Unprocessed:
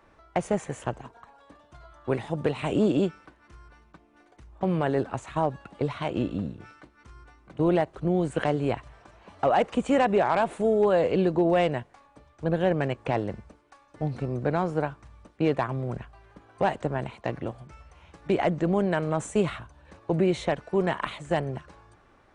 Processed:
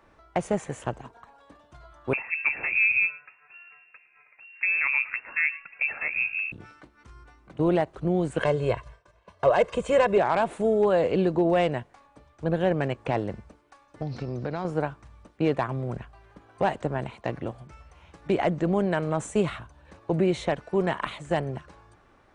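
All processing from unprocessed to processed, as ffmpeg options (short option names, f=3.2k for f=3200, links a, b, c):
-filter_complex "[0:a]asettb=1/sr,asplit=3[a][b][c];[a]atrim=end=2.134[d];[b]atrim=start=2.13:end=6.52,asetpts=PTS-STARTPTS,afade=t=in:d=0.004:c=qsin,afade=t=out:st=4.386:d=0.004:c=qsin,lowpass=f=2.4k:t=q:w=0.5098,lowpass=f=2.4k:t=q:w=0.6013,lowpass=f=2.4k:t=q:w=0.9,lowpass=f=2.4k:t=q:w=2.563,afreqshift=-2800,aecho=1:1:110:0.1,atrim=end_sample=193599[e];[c]atrim=start=6.516[f];[d][e]acrossfade=d=0.004:c1=hsin:c2=qsin[g];[g][f]acrossfade=d=0.004:c1=qsin:c2=hsin,asettb=1/sr,asplit=3[h][i][j];[h]atrim=end=8.404[k];[i]atrim=start=8.4:end=10.18,asetpts=PTS-STARTPTS,afade=t=in:d=0.004:c=qsin,afade=t=out:st=1.776:d=0.004:c=qsin,aecho=1:1:1.9:0.69,atrim=end_sample=78498,agate=range=-33dB:threshold=-43dB:ratio=3:release=100:detection=peak[l];[j]atrim=start=10.176[m];[k][l]acrossfade=d=0.004:c1=hsin:c2=qsin[n];[n][m]acrossfade=d=0.004:c1=qsin:c2=hsin,asettb=1/sr,asplit=3[o][p][q];[o]atrim=end=14.024[r];[p]atrim=start=14.02:end=14.65,asetpts=PTS-STARTPTS,afade=t=in:d=0.004:c=qsin,afade=t=out:st=0.626:d=0.004:c=qsin,acompressor=threshold=-27dB:ratio=3:attack=3.2:release=140:knee=1:detection=peak,lowpass=f=5.2k:t=q:w=3.6[s];[q]atrim=start=14.646[t];[r][s]acrossfade=d=0.004:c1=hsin:c2=qsin[u];[u][t]acrossfade=d=0.004:c1=qsin:c2=hsin"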